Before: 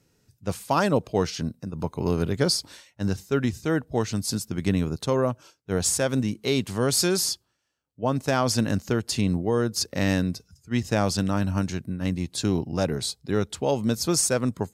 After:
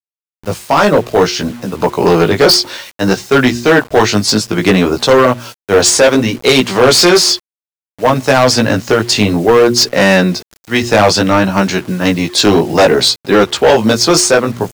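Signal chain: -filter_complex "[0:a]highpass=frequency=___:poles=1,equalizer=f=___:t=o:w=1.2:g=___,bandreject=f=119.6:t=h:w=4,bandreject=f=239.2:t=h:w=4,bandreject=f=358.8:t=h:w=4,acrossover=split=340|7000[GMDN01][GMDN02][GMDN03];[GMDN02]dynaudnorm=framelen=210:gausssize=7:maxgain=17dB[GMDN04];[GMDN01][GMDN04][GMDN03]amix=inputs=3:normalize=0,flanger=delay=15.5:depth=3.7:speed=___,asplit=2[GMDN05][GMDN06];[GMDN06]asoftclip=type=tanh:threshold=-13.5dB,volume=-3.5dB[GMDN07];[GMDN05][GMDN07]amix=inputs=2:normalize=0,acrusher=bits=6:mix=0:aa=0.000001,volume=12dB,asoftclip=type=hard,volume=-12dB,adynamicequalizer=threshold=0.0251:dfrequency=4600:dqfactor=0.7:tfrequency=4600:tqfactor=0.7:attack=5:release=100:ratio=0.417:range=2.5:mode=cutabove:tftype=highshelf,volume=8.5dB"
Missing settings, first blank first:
65, 13k, -4.5, 0.6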